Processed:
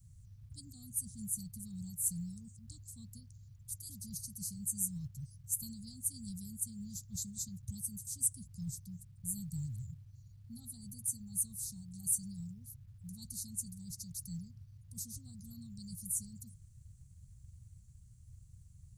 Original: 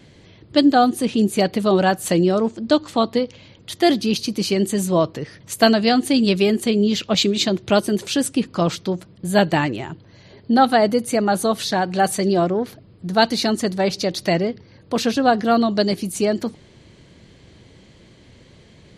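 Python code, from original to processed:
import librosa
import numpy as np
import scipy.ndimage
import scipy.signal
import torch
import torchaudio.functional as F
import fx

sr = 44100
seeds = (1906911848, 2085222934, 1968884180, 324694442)

y = scipy.signal.sosfilt(scipy.signal.cheby2(4, 60, [340.0, 2900.0], 'bandstop', fs=sr, output='sos'), x)
y = fx.quant_companded(y, sr, bits=8)
y = F.gain(torch.from_numpy(y), -2.0).numpy()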